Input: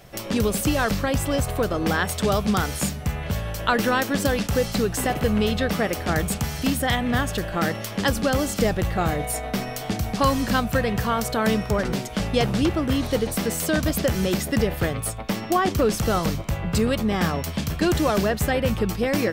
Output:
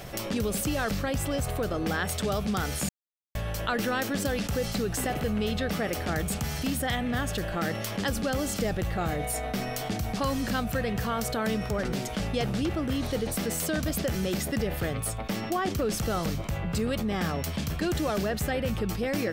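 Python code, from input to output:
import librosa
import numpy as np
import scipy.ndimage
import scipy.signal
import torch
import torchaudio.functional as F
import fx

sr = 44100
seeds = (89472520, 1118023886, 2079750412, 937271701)

y = fx.edit(x, sr, fx.silence(start_s=2.89, length_s=0.46), tone=tone)
y = fx.dynamic_eq(y, sr, hz=1000.0, q=5.7, threshold_db=-44.0, ratio=4.0, max_db=-5)
y = fx.env_flatten(y, sr, amount_pct=50)
y = y * librosa.db_to_amplitude(-8.5)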